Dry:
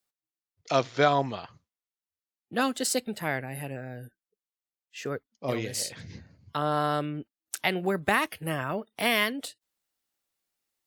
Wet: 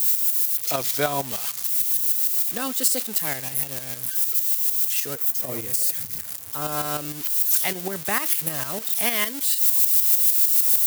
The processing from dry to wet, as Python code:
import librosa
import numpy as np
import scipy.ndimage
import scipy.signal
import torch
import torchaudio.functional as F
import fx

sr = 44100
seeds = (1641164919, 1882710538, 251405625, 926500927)

y = x + 0.5 * 10.0 ** (-18.0 / 20.0) * np.diff(np.sign(x), prepend=np.sign(x[:1]))
y = fx.peak_eq(y, sr, hz=3800.0, db=-7.0, octaves=1.9, at=(5.14, 6.62))
y = fx.tremolo_shape(y, sr, shape='saw_up', hz=6.6, depth_pct=60)
y = fx.high_shelf(y, sr, hz=10000.0, db=8.0)